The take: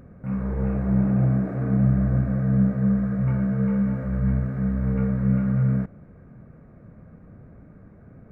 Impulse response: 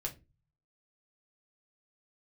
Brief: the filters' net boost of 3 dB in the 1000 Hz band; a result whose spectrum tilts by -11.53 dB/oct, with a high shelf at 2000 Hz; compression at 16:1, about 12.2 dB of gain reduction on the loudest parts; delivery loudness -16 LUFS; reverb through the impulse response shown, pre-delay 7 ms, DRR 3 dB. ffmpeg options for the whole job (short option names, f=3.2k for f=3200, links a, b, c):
-filter_complex "[0:a]equalizer=f=1k:t=o:g=5,highshelf=f=2k:g=-3,acompressor=threshold=-28dB:ratio=16,asplit=2[a][b];[1:a]atrim=start_sample=2205,adelay=7[c];[b][c]afir=irnorm=-1:irlink=0,volume=-3.5dB[d];[a][d]amix=inputs=2:normalize=0,volume=11dB"